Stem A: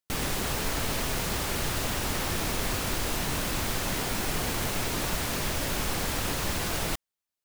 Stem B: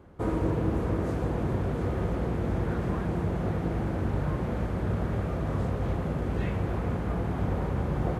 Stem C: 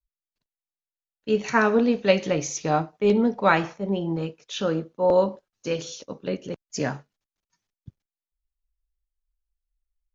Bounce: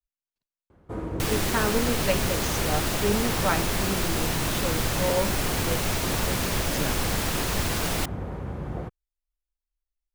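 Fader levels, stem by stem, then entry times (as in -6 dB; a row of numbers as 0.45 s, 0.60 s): +2.5 dB, -4.5 dB, -7.0 dB; 1.10 s, 0.70 s, 0.00 s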